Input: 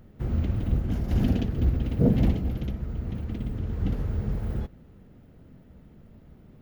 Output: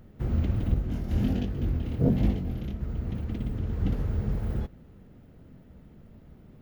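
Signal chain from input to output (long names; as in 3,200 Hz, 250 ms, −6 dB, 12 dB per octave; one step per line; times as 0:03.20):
0:00.74–0:02.81: chorus effect 1.3 Hz, delay 20 ms, depth 5.9 ms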